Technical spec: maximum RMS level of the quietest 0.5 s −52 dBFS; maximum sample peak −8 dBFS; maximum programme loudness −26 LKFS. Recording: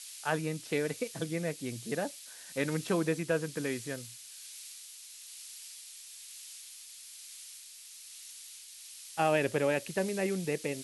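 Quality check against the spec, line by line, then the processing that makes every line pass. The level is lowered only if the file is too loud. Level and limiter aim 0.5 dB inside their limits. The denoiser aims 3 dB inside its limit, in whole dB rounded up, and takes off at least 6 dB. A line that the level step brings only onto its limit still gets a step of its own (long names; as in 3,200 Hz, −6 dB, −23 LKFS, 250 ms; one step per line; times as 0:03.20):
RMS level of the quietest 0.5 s −50 dBFS: out of spec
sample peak −15.0 dBFS: in spec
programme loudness −34.5 LKFS: in spec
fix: broadband denoise 6 dB, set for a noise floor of −50 dBFS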